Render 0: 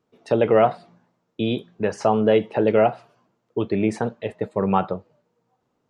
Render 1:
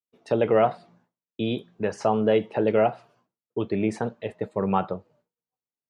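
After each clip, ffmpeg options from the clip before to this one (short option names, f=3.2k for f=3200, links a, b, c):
-af "agate=range=-33dB:threshold=-54dB:ratio=3:detection=peak,volume=-3.5dB"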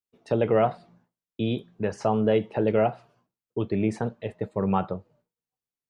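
-af "lowshelf=f=140:g=10,volume=-2.5dB"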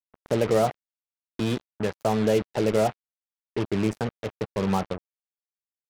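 -filter_complex "[0:a]acrossover=split=960[a][b];[a]acompressor=mode=upward:threshold=-29dB:ratio=2.5[c];[b]alimiter=level_in=1.5dB:limit=-24dB:level=0:latency=1:release=209,volume=-1.5dB[d];[c][d]amix=inputs=2:normalize=0,acrusher=bits=4:mix=0:aa=0.5"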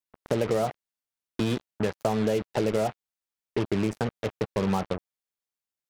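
-af "acompressor=threshold=-24dB:ratio=6,volume=2.5dB"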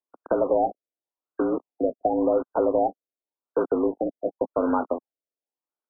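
-af "highpass=f=190:t=q:w=0.5412,highpass=f=190:t=q:w=1.307,lowpass=f=3.1k:t=q:w=0.5176,lowpass=f=3.1k:t=q:w=0.7071,lowpass=f=3.1k:t=q:w=1.932,afreqshift=68,acrusher=bits=2:mode=log:mix=0:aa=0.000001,afftfilt=real='re*lt(b*sr/1024,700*pow(1600/700,0.5+0.5*sin(2*PI*0.9*pts/sr)))':imag='im*lt(b*sr/1024,700*pow(1600/700,0.5+0.5*sin(2*PI*0.9*pts/sr)))':win_size=1024:overlap=0.75,volume=4dB"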